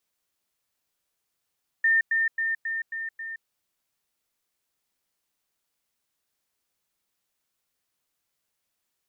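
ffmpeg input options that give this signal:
-f lavfi -i "aevalsrc='pow(10,(-17.5-3*floor(t/0.27))/20)*sin(2*PI*1810*t)*clip(min(mod(t,0.27),0.17-mod(t,0.27))/0.005,0,1)':d=1.62:s=44100"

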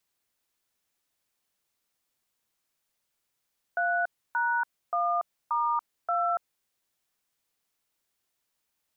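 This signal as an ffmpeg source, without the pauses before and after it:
-f lavfi -i "aevalsrc='0.0473*clip(min(mod(t,0.579),0.285-mod(t,0.579))/0.002,0,1)*(eq(floor(t/0.579),0)*(sin(2*PI*697*mod(t,0.579))+sin(2*PI*1477*mod(t,0.579)))+eq(floor(t/0.579),1)*(sin(2*PI*941*mod(t,0.579))+sin(2*PI*1477*mod(t,0.579)))+eq(floor(t/0.579),2)*(sin(2*PI*697*mod(t,0.579))+sin(2*PI*1209*mod(t,0.579)))+eq(floor(t/0.579),3)*(sin(2*PI*941*mod(t,0.579))+sin(2*PI*1209*mod(t,0.579)))+eq(floor(t/0.579),4)*(sin(2*PI*697*mod(t,0.579))+sin(2*PI*1336*mod(t,0.579))))':d=2.895:s=44100"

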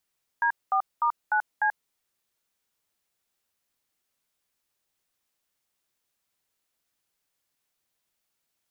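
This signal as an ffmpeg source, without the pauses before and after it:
-f lavfi -i "aevalsrc='0.0708*clip(min(mod(t,0.299),0.085-mod(t,0.299))/0.002,0,1)*(eq(floor(t/0.299),0)*(sin(2*PI*941*mod(t,0.299))+sin(2*PI*1633*mod(t,0.299)))+eq(floor(t/0.299),1)*(sin(2*PI*770*mod(t,0.299))+sin(2*PI*1209*mod(t,0.299)))+eq(floor(t/0.299),2)*(sin(2*PI*941*mod(t,0.299))+sin(2*PI*1209*mod(t,0.299)))+eq(floor(t/0.299),3)*(sin(2*PI*852*mod(t,0.299))+sin(2*PI*1477*mod(t,0.299)))+eq(floor(t/0.299),4)*(sin(2*PI*852*mod(t,0.299))+sin(2*PI*1633*mod(t,0.299))))':d=1.495:s=44100"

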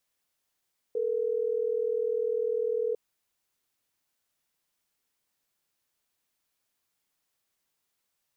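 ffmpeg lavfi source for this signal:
-f lavfi -i "aevalsrc='0.0376*(sin(2*PI*440*t)+sin(2*PI*480*t))*clip(min(mod(t,6),2-mod(t,6))/0.005,0,1)':d=3.12:s=44100"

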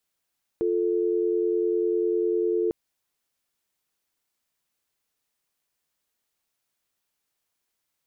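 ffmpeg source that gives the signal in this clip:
-f lavfi -i "aevalsrc='0.0631*(sin(2*PI*350*t)+sin(2*PI*440*t))':d=2.1:s=44100"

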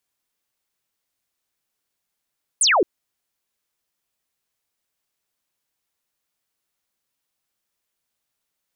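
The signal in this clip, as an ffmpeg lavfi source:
-f lavfi -i "aevalsrc='0.211*clip(t/0.002,0,1)*clip((0.22-t)/0.002,0,1)*sin(2*PI*10000*0.22/log(310/10000)*(exp(log(310/10000)*t/0.22)-1))':d=0.22:s=44100"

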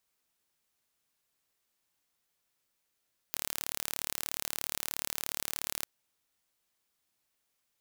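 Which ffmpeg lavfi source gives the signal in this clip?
-f lavfi -i "aevalsrc='0.447*eq(mod(n,1195),0)':d=2.5:s=44100"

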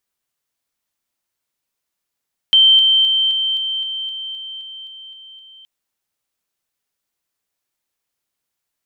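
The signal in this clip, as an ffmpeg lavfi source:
-f lavfi -i "aevalsrc='pow(10,(-7-3*floor(t/0.26))/20)*sin(2*PI*3120*t)':d=3.12:s=44100"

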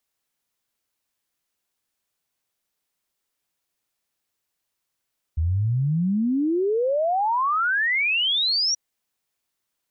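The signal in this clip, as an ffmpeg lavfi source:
-f lavfi -i "aevalsrc='0.112*clip(min(t,3.38-t)/0.01,0,1)*sin(2*PI*76*3.38/log(5800/76)*(exp(log(5800/76)*t/3.38)-1))':d=3.38:s=44100"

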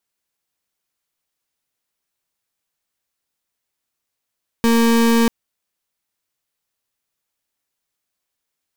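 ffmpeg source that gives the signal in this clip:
-f lavfi -i "aevalsrc='0.2*(2*lt(mod(231*t,1),0.34)-1)':d=0.64:s=44100"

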